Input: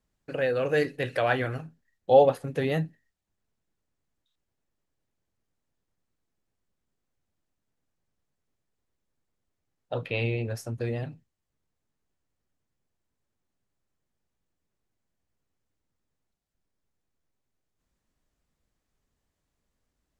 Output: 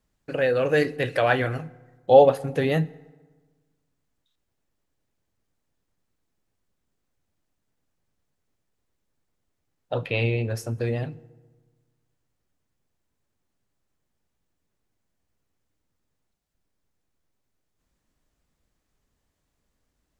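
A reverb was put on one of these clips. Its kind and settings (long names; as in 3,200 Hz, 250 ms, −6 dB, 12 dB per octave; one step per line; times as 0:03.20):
feedback delay network reverb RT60 1.4 s, low-frequency decay 1.2×, high-frequency decay 0.6×, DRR 19 dB
level +4 dB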